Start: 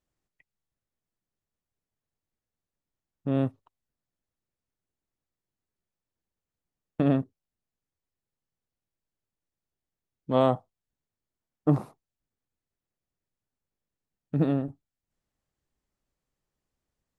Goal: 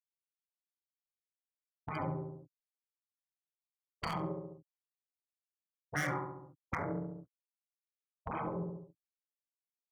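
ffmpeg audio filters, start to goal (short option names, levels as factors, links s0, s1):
-filter_complex "[0:a]acontrast=49,highpass=50,equalizer=f=190:w=2.6:g=-11.5,aecho=1:1:42|78:0.668|0.376,afftfilt=real='re*gte(hypot(re,im),0.0501)':imag='im*gte(hypot(re,im),0.0501)':win_size=1024:overlap=0.75,acrossover=split=1400[s0][s1];[s1]asoftclip=type=hard:threshold=0.0112[s2];[s0][s2]amix=inputs=2:normalize=0,asetrate=76440,aresample=44100,aeval=exprs='val(0)*sin(2*PI*75*n/s)':c=same,asplit=2[s3][s4];[s4]adelay=69,lowpass=f=1100:p=1,volume=0.447,asplit=2[s5][s6];[s6]adelay=69,lowpass=f=1100:p=1,volume=0.49,asplit=2[s7][s8];[s8]adelay=69,lowpass=f=1100:p=1,volume=0.49,asplit=2[s9][s10];[s10]adelay=69,lowpass=f=1100:p=1,volume=0.49,asplit=2[s11][s12];[s12]adelay=69,lowpass=f=1100:p=1,volume=0.49,asplit=2[s13][s14];[s14]adelay=69,lowpass=f=1100:p=1,volume=0.49[s15];[s3][s5][s7][s9][s11][s13][s15]amix=inputs=7:normalize=0,acompressor=threshold=0.00891:ratio=2.5,afftfilt=real='re*lt(hypot(re,im),0.0398)':imag='im*lt(hypot(re,im),0.0398)':win_size=1024:overlap=0.75,bass=f=250:g=8,treble=f=4000:g=13,volume=2.66"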